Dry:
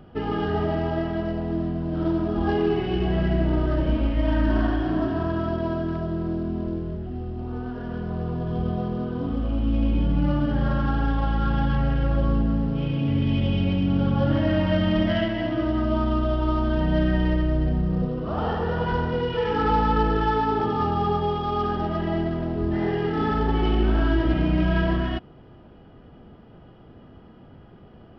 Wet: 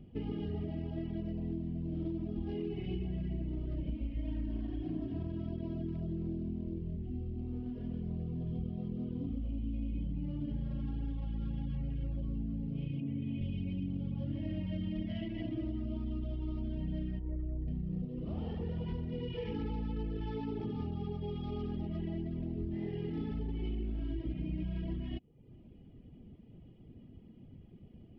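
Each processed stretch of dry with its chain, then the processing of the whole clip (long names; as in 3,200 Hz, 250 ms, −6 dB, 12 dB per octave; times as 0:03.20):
0:13.00–0:13.41: high-pass filter 140 Hz + high-frequency loss of the air 260 metres
0:17.19–0:17.68: low-pass filter 1,200 Hz + parametric band 170 Hz −7 dB 1.4 octaves
whole clip: reverb reduction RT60 0.61 s; drawn EQ curve 250 Hz 0 dB, 1,500 Hz −25 dB, 2,200 Hz −5 dB, 5,400 Hz −12 dB; downward compressor, threshold −30 dBFS; level −3.5 dB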